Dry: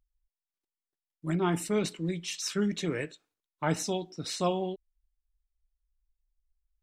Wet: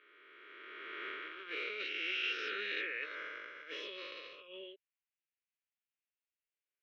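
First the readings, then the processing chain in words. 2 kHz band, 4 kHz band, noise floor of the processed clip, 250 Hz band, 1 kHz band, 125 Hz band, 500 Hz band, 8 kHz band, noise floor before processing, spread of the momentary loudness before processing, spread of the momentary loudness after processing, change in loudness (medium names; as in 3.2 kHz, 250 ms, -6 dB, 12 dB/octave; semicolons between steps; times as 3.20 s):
+4.0 dB, -2.5 dB, under -85 dBFS, -24.0 dB, -12.5 dB, under -40 dB, -15.0 dB, under -25 dB, under -85 dBFS, 8 LU, 16 LU, -8.0 dB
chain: reverse spectral sustain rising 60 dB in 2.75 s; elliptic band-pass 530–2800 Hz, stop band 50 dB; compressor with a negative ratio -36 dBFS, ratio -1; Butterworth band-stop 790 Hz, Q 0.55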